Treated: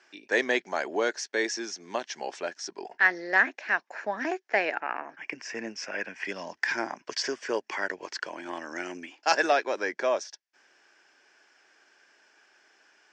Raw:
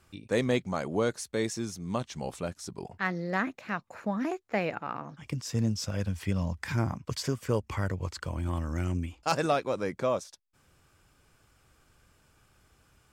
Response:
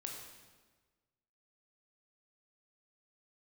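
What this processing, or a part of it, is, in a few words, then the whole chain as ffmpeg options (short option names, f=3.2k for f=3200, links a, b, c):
phone speaker on a table: -filter_complex "[0:a]lowpass=6.3k,asettb=1/sr,asplit=3[a][b][c];[a]atrim=end=4.804[d];[b]atrim=start=4.8:end=6.25,asetpts=PTS-STARTPTS,afade=t=in:d=0.004:c=qsin,afade=t=out:st=1.446:d=0.004:c=qsin,highshelf=f=3k:t=q:w=3:g=-6.5[e];[c]atrim=start=6.246[f];[d][e]acrossfade=d=0.004:c1=hsin:c2=qsin[g];[g][f]acrossfade=d=0.004:c1=qsin:c2=hsin,highpass=f=370:w=0.5412,highpass=f=370:w=1.3066,equalizer=f=500:t=q:w=4:g=-8,equalizer=f=1.2k:t=q:w=4:g=-9,equalizer=f=1.7k:t=q:w=4:g=9,equalizer=f=3.8k:t=q:w=4:g=-5,equalizer=f=5.6k:t=q:w=4:g=6,lowpass=f=6.8k:w=0.5412,lowpass=f=6.8k:w=1.3066,volume=6dB"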